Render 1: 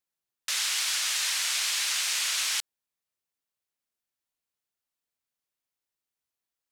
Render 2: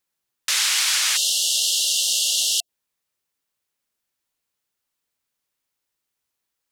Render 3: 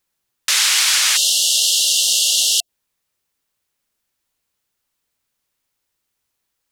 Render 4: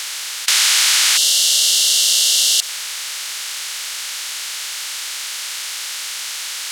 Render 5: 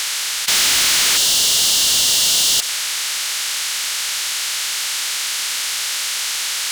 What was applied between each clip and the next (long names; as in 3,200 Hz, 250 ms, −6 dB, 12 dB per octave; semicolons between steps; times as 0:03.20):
time-frequency box erased 0:01.17–0:02.69, 740–2,700 Hz; notch filter 690 Hz, Q 14; level +8 dB
low-shelf EQ 110 Hz +6 dB; level +5 dB
compressor on every frequency bin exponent 0.2; level −4 dB
soft clipping −18 dBFS, distortion −8 dB; level +5.5 dB